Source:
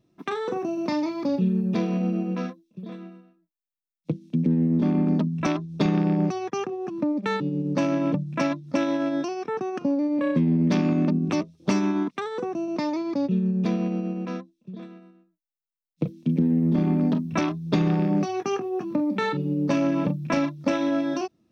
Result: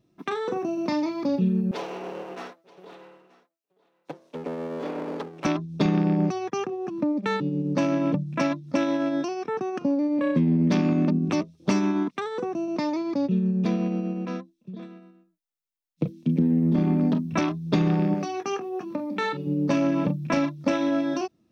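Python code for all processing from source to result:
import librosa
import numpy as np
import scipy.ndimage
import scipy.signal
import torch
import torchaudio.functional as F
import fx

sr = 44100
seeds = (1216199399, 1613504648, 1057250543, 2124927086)

y = fx.chain(x, sr, fx.lower_of_two(delay_ms=7.0),
    fx.highpass(hz=470.0, slope=12),
    fx.echo_single(ms=929, db=-21.5), at=(1.71, 5.45))
y = fx.chain(y, sr, fx.low_shelf(hz=280.0, db=-8.5),
    fx.hum_notches(base_hz=60, count=7), at=(18.14, 19.47))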